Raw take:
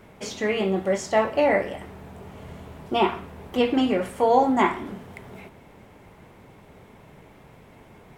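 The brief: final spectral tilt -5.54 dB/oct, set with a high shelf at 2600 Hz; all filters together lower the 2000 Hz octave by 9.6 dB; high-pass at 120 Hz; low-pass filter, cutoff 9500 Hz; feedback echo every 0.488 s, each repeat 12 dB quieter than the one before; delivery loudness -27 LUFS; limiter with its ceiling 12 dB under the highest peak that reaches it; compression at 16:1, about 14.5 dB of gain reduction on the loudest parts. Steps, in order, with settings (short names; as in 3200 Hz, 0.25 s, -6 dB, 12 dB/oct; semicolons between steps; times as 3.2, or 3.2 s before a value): HPF 120 Hz; LPF 9500 Hz; bell 2000 Hz -9 dB; high shelf 2600 Hz -5 dB; compressor 16:1, threshold -28 dBFS; limiter -29.5 dBFS; feedback echo 0.488 s, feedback 25%, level -12 dB; gain +12.5 dB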